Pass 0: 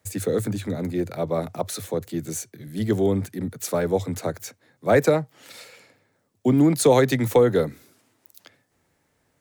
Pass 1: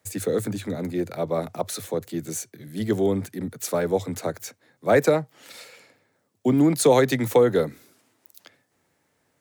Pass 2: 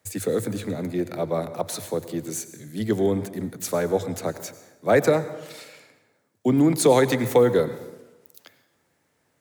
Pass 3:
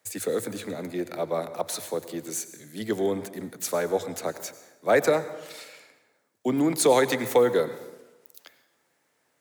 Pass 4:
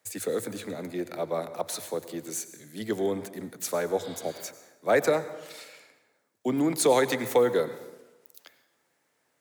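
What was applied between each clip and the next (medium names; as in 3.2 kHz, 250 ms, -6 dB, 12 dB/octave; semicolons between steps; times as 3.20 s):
high-pass 140 Hz 6 dB/octave
plate-style reverb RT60 1.1 s, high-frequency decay 0.7×, pre-delay 80 ms, DRR 12.5 dB
high-pass 430 Hz 6 dB/octave
spectral replace 4.06–4.40 s, 880–5000 Hz; trim -2 dB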